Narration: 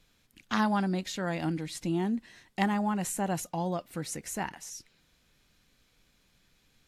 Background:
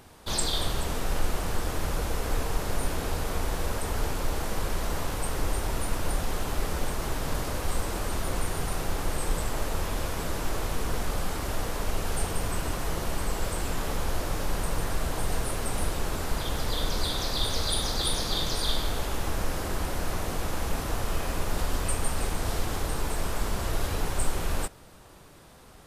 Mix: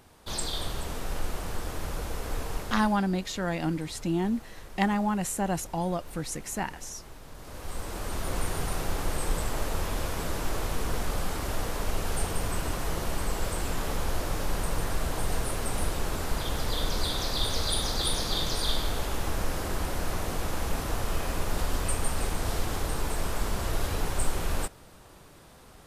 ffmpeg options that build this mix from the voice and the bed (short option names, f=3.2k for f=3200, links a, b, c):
-filter_complex "[0:a]adelay=2200,volume=2dB[a];[1:a]volume=11.5dB,afade=t=out:st=2.55:d=0.45:silence=0.251189,afade=t=in:st=7.36:d=1.08:silence=0.158489[b];[a][b]amix=inputs=2:normalize=0"